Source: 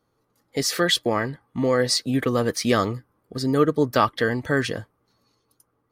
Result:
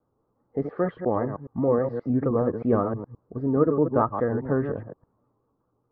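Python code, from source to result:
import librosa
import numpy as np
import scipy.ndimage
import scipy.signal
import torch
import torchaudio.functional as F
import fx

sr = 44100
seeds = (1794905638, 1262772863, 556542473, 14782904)

y = fx.reverse_delay(x, sr, ms=105, wet_db=-7)
y = scipy.signal.sosfilt(scipy.signal.butter(4, 1100.0, 'lowpass', fs=sr, output='sos'), y)
y = fx.vibrato(y, sr, rate_hz=5.0, depth_cents=95.0)
y = y * librosa.db_to_amplitude(-1.5)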